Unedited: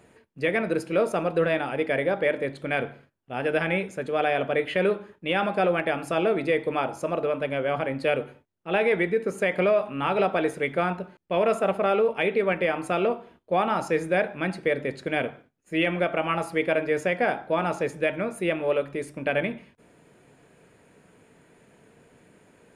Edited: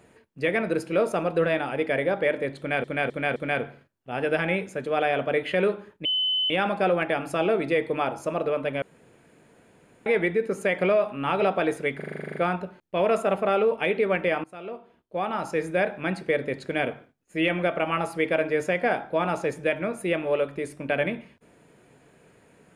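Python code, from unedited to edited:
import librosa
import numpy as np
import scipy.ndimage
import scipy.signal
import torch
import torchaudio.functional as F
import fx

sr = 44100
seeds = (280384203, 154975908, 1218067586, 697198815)

y = fx.edit(x, sr, fx.repeat(start_s=2.58, length_s=0.26, count=4),
    fx.insert_tone(at_s=5.27, length_s=0.45, hz=3030.0, db=-21.5),
    fx.room_tone_fill(start_s=7.59, length_s=1.24),
    fx.stutter(start_s=10.73, slice_s=0.04, count=11),
    fx.fade_in_from(start_s=12.81, length_s=1.49, floor_db=-21.5), tone=tone)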